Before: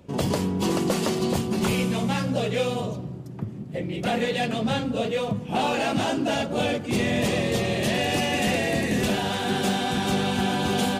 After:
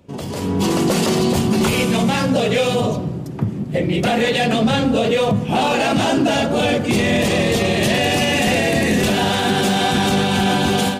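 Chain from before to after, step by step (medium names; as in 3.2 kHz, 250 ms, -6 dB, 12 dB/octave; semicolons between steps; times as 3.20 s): de-hum 61.55 Hz, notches 31; peak limiter -20.5 dBFS, peak gain reduction 8 dB; level rider gain up to 12 dB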